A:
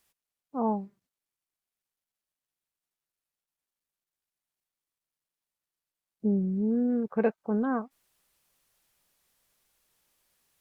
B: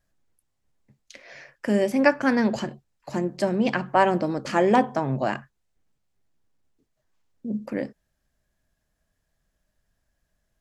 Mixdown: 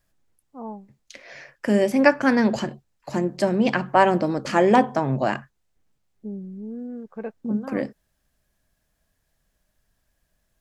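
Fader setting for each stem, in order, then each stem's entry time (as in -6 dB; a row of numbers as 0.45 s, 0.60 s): -7.5 dB, +2.5 dB; 0.00 s, 0.00 s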